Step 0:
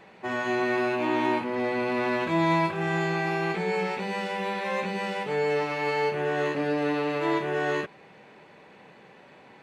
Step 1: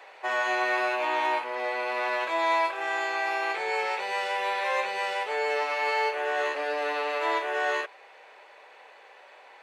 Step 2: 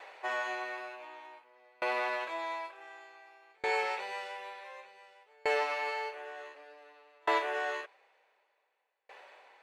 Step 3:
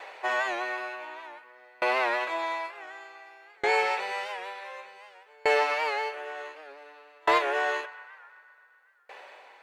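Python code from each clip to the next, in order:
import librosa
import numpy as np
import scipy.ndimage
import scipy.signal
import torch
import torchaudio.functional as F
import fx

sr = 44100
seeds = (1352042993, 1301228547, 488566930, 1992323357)

y1 = scipy.signal.sosfilt(scipy.signal.butter(4, 530.0, 'highpass', fs=sr, output='sos'), x)
y1 = fx.rider(y1, sr, range_db=10, speed_s=2.0)
y1 = y1 * 10.0 ** (2.0 / 20.0)
y2 = fx.tremolo_decay(y1, sr, direction='decaying', hz=0.55, depth_db=35)
y3 = np.clip(y2, -10.0 ** (-20.0 / 20.0), 10.0 ** (-20.0 / 20.0))
y3 = fx.echo_banded(y3, sr, ms=127, feedback_pct=77, hz=1500.0, wet_db=-16.5)
y3 = fx.record_warp(y3, sr, rpm=78.0, depth_cents=100.0)
y3 = y3 * 10.0 ** (6.5 / 20.0)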